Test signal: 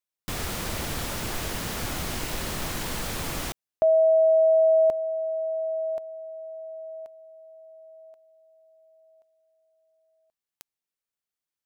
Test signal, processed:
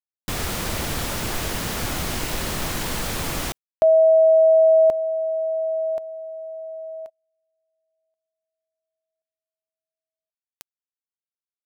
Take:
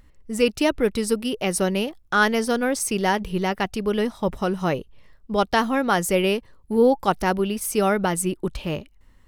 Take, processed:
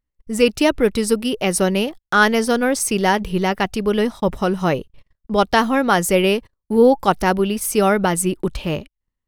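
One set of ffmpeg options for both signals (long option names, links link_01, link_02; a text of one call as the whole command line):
ffmpeg -i in.wav -af "agate=range=-32dB:threshold=-44dB:ratio=16:release=73:detection=rms,volume=4.5dB" out.wav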